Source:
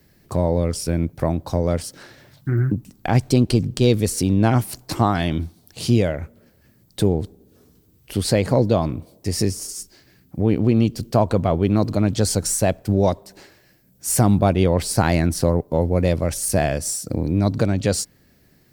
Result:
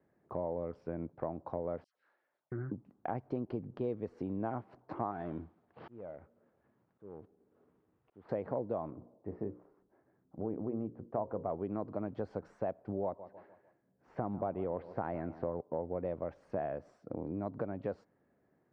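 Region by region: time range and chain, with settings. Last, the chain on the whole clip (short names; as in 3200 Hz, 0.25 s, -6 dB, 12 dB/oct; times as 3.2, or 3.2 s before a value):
1.84–2.52 differentiator + dispersion lows, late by 0.121 s, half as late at 1200 Hz
5.11–8.29 CVSD 32 kbps + auto swell 0.749 s
8.9–11.5 block floating point 7-bit + LPF 1300 Hz + notches 60/120/180/240/300/360/420/480/540 Hz
13.04–15.61 air absorption 110 m + feedback echo 0.151 s, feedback 43%, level -18 dB
whole clip: Bessel low-pass 680 Hz, order 4; differentiator; compressor 2.5:1, threshold -49 dBFS; gain +14.5 dB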